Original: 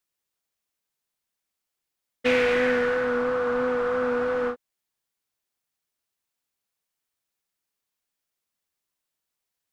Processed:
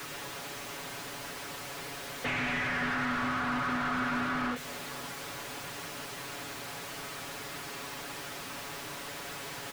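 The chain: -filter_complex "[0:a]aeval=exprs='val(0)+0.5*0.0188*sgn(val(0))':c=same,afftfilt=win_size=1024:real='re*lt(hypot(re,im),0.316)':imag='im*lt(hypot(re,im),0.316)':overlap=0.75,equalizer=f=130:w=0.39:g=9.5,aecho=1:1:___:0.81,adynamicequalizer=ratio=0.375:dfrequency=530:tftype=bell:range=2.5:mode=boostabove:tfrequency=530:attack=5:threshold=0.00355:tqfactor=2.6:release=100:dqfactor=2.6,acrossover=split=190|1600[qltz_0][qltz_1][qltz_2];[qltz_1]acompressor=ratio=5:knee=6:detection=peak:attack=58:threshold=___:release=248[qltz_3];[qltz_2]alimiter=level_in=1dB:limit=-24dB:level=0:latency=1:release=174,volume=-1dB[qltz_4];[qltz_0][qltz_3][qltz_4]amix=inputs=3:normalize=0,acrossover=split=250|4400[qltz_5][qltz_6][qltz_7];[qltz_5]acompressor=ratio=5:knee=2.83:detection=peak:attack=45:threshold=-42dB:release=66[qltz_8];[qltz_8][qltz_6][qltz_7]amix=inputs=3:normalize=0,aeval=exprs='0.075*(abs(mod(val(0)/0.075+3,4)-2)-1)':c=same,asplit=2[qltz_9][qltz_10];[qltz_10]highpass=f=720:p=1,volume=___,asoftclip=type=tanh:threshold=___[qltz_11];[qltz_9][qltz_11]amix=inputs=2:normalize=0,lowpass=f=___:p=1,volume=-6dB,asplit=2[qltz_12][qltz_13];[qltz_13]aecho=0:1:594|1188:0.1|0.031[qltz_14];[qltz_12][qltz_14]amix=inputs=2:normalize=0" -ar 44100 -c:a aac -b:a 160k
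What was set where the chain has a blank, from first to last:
7.1, -42dB, 18dB, -22.5dB, 1.4k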